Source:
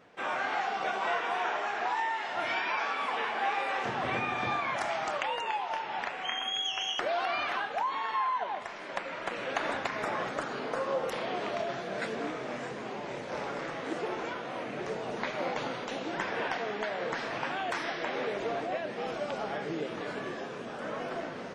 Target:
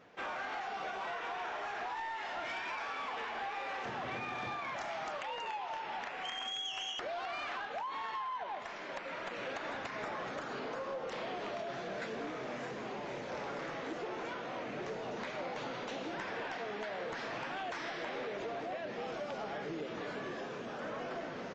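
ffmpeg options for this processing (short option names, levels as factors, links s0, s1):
-af "acompressor=threshold=0.0224:ratio=6,aresample=16000,asoftclip=type=tanh:threshold=0.0282,aresample=44100,volume=0.841"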